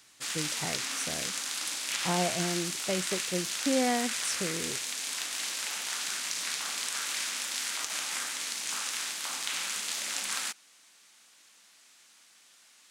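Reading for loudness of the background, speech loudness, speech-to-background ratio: -31.5 LUFS, -34.0 LUFS, -2.5 dB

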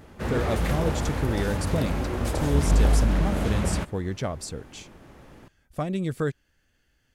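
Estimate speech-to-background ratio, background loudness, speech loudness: -4.0 dB, -26.5 LUFS, -30.5 LUFS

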